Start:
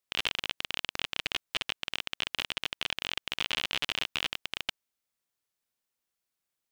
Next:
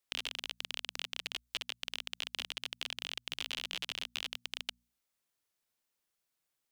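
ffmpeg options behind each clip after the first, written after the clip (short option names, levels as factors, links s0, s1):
-filter_complex "[0:a]bandreject=f=60:t=h:w=6,bandreject=f=120:t=h:w=6,bandreject=f=180:t=h:w=6,bandreject=f=240:t=h:w=6,acrossover=split=560|1200|3100[s0][s1][s2][s3];[s0]acompressor=threshold=0.00178:ratio=4[s4];[s1]acompressor=threshold=0.00126:ratio=4[s5];[s2]acompressor=threshold=0.00501:ratio=4[s6];[s3]acompressor=threshold=0.0126:ratio=4[s7];[s4][s5][s6][s7]amix=inputs=4:normalize=0,volume=1.12"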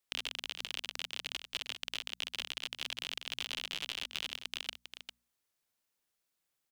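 -af "aecho=1:1:400:0.355"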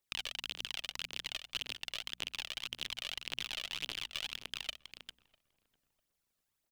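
-filter_complex "[0:a]aphaser=in_gain=1:out_gain=1:delay=1.8:decay=0.55:speed=1.8:type=triangular,asplit=2[s0][s1];[s1]adelay=649,lowpass=f=870:p=1,volume=0.0841,asplit=2[s2][s3];[s3]adelay=649,lowpass=f=870:p=1,volume=0.39,asplit=2[s4][s5];[s5]adelay=649,lowpass=f=870:p=1,volume=0.39[s6];[s0][s2][s4][s6]amix=inputs=4:normalize=0,volume=0.75"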